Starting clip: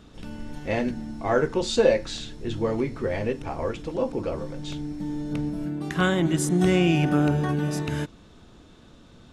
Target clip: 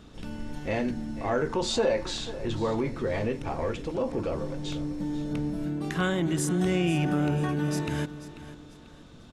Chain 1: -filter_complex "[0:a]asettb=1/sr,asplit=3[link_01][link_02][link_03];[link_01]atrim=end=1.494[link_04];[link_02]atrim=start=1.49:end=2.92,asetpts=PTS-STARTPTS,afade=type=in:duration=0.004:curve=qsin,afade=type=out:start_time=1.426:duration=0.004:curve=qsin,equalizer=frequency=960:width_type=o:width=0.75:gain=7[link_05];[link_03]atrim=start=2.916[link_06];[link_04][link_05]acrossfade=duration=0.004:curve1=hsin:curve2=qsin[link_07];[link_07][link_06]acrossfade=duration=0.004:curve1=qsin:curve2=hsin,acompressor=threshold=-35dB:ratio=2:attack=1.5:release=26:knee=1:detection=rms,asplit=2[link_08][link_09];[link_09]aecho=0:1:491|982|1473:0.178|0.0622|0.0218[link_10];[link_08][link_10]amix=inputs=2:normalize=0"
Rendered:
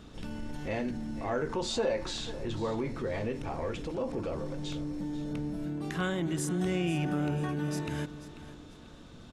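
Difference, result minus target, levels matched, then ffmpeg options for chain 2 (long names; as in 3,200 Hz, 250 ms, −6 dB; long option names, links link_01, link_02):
downward compressor: peak gain reduction +5 dB
-filter_complex "[0:a]asettb=1/sr,asplit=3[link_01][link_02][link_03];[link_01]atrim=end=1.494[link_04];[link_02]atrim=start=1.49:end=2.92,asetpts=PTS-STARTPTS,afade=type=in:duration=0.004:curve=qsin,afade=type=out:start_time=1.426:duration=0.004:curve=qsin,equalizer=frequency=960:width_type=o:width=0.75:gain=7[link_05];[link_03]atrim=start=2.916[link_06];[link_04][link_05]acrossfade=duration=0.004:curve1=hsin:curve2=qsin[link_07];[link_07][link_06]acrossfade=duration=0.004:curve1=qsin:curve2=hsin,acompressor=threshold=-25.5dB:ratio=2:attack=1.5:release=26:knee=1:detection=rms,asplit=2[link_08][link_09];[link_09]aecho=0:1:491|982|1473:0.178|0.0622|0.0218[link_10];[link_08][link_10]amix=inputs=2:normalize=0"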